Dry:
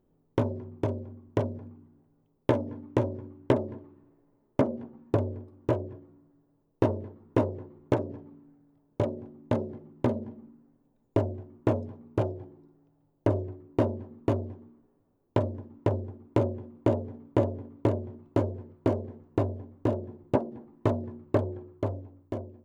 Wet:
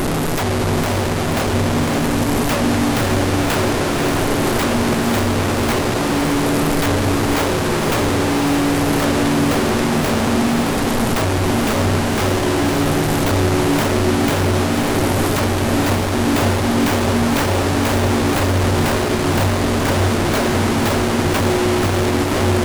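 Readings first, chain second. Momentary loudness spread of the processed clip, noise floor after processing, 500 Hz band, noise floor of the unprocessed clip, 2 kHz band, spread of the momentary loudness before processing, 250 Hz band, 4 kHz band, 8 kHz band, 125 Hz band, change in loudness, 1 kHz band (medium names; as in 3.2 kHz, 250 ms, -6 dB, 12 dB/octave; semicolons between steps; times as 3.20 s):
1 LU, -19 dBFS, +11.5 dB, -71 dBFS, +26.5 dB, 12 LU, +15.5 dB, +30.5 dB, no reading, +13.0 dB, +14.0 dB, +19.0 dB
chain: one-bit delta coder 64 kbps, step -20 dBFS; integer overflow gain 21 dB; echo that smears into a reverb 571 ms, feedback 68%, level -5 dB; trim +7.5 dB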